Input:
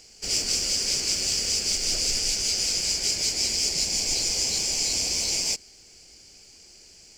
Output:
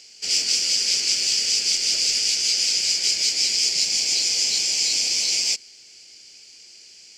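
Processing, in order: frequency weighting D; trim -4.5 dB

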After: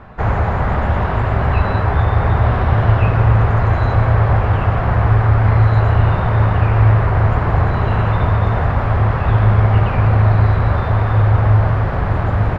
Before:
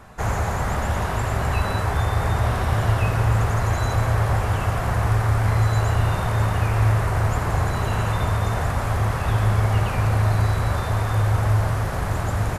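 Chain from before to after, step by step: distance through air 370 m; loudspeaker Doppler distortion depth 0.13 ms; trim +7.5 dB

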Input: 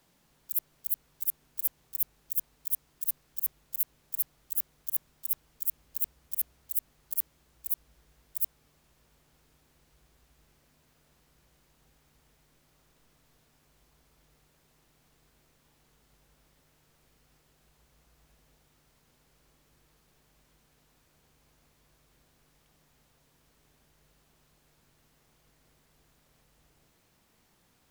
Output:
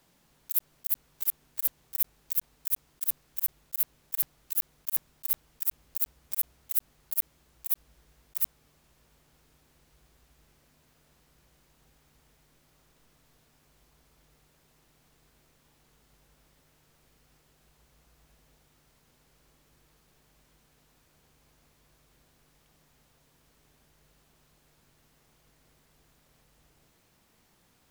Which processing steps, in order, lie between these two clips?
block-companded coder 5-bit; trim +1.5 dB

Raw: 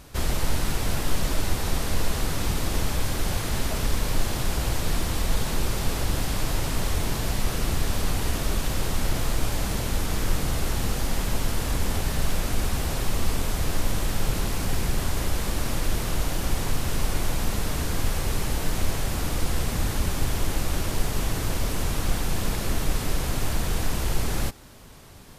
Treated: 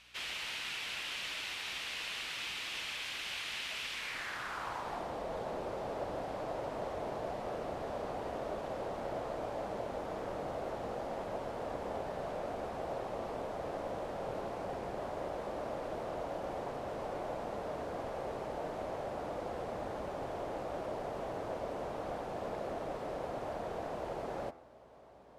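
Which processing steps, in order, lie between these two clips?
band-pass sweep 2.7 kHz -> 620 Hz, 3.92–5.16 s; hum 60 Hz, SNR 33 dB; de-hum 83.79 Hz, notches 34; trim +1.5 dB

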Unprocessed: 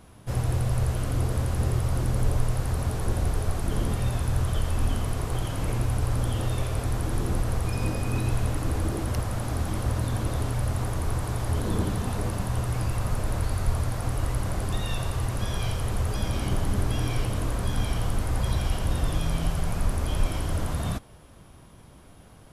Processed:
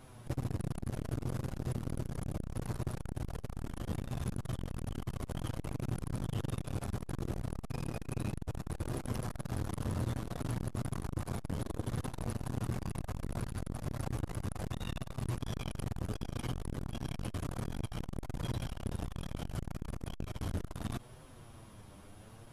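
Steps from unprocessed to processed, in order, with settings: compression 6:1, threshold -25 dBFS, peak gain reduction 8.5 dB; flange 0.66 Hz, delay 7.6 ms, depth 2.6 ms, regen +14%; transformer saturation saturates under 320 Hz; trim +1 dB

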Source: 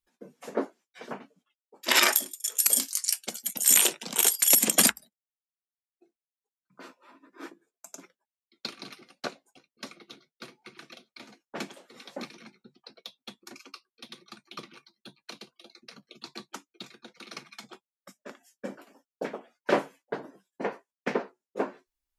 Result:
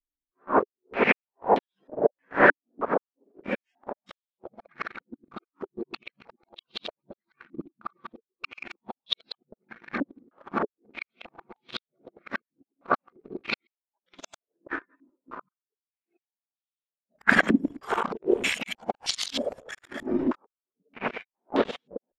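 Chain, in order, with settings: reverse the whole clip; waveshaping leveller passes 3; step-sequenced low-pass 3.2 Hz 290–3500 Hz; trim -4.5 dB

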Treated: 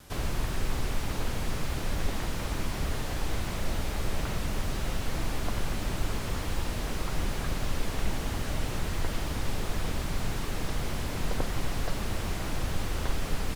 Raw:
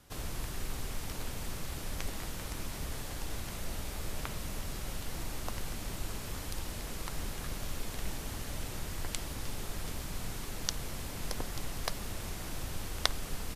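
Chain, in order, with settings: vibrato 6.7 Hz 86 cents; slew-rate limiter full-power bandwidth 17 Hz; trim +8.5 dB

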